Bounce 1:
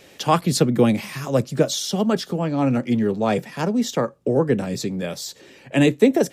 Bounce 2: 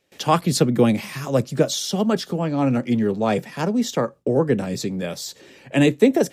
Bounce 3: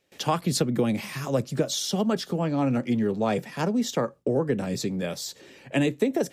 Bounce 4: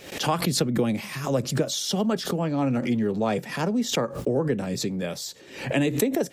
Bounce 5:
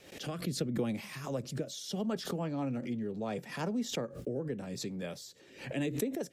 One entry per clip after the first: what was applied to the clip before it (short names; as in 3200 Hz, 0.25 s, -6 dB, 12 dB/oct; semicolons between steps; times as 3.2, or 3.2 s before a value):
gate with hold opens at -38 dBFS
compressor, threshold -17 dBFS, peak gain reduction 8.5 dB; gain -2.5 dB
backwards sustainer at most 93 dB/s
rotary speaker horn 0.75 Hz, later 7.5 Hz, at 4.99; gain -9 dB